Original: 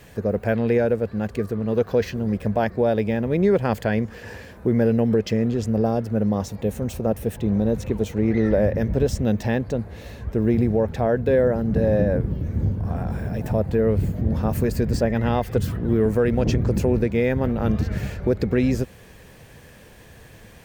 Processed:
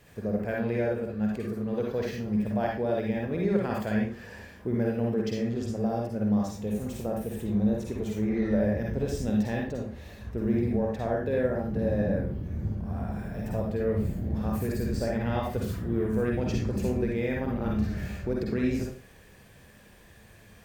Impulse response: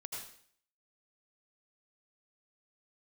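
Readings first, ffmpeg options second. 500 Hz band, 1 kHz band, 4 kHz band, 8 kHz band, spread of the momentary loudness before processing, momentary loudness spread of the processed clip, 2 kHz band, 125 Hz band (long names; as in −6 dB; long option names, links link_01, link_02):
−8.0 dB, −6.5 dB, −6.5 dB, −6.5 dB, 7 LU, 6 LU, −6.0 dB, −8.0 dB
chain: -filter_complex "[1:a]atrim=start_sample=2205,asetrate=74970,aresample=44100[link_01];[0:a][link_01]afir=irnorm=-1:irlink=0"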